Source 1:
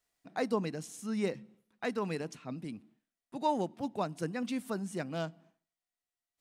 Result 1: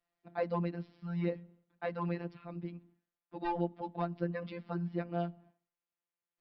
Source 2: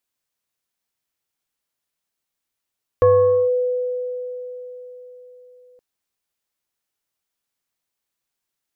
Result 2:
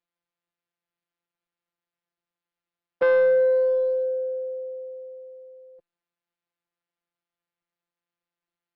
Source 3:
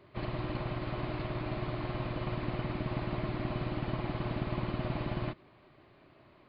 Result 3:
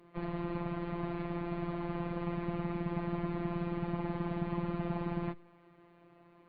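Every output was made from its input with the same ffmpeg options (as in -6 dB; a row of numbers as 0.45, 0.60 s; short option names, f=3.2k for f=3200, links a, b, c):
-filter_complex "[0:a]lowpass=f=2.3k:p=1,aemphasis=mode=reproduction:type=50fm,acrossover=split=160|550[a][b][c];[c]aeval=exprs='clip(val(0),-1,0.0266)':c=same[d];[a][b][d]amix=inputs=3:normalize=0,afftfilt=real='hypot(re,im)*cos(PI*b)':imag='0':win_size=1024:overlap=0.75,aresample=11025,aeval=exprs='0.376*sin(PI/2*2*val(0)/0.376)':c=same,aresample=44100,volume=-7dB" -ar 48000 -c:a libopus -b:a 48k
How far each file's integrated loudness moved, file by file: -2.0, -2.5, -1.0 LU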